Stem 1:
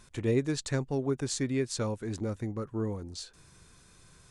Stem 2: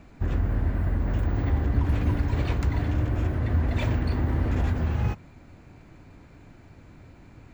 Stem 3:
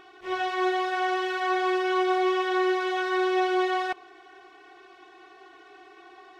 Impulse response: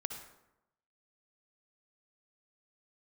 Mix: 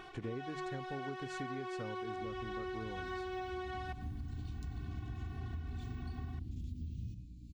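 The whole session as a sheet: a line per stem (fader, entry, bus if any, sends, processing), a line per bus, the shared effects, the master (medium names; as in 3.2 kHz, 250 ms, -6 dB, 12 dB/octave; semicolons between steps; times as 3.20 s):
-2.5 dB, 0.00 s, no send, low-pass 1.5 kHz 6 dB/octave
3.43 s -22 dB -> 4.13 s -13.5 dB, 2.00 s, send -4.5 dB, inverse Chebyshev band-stop 700–1400 Hz, stop band 70 dB; upward compressor, threshold -36 dBFS; hum 60 Hz, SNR 17 dB
-0.5 dB, 0.00 s, send -16.5 dB, auto duck -10 dB, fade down 0.35 s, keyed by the first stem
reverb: on, RT60 0.90 s, pre-delay 52 ms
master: hum notches 50/100/150 Hz; compression 10:1, threshold -38 dBFS, peak gain reduction 14.5 dB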